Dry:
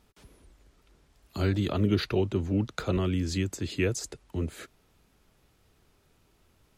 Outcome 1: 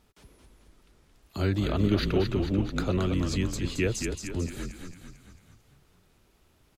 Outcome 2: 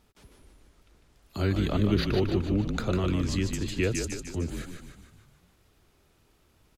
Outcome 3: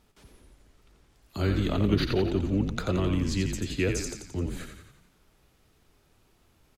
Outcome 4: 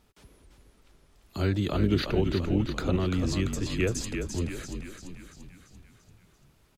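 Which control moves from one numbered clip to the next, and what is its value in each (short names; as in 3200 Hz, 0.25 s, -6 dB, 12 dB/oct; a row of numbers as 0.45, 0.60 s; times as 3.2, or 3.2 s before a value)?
frequency-shifting echo, time: 223, 150, 87, 341 ms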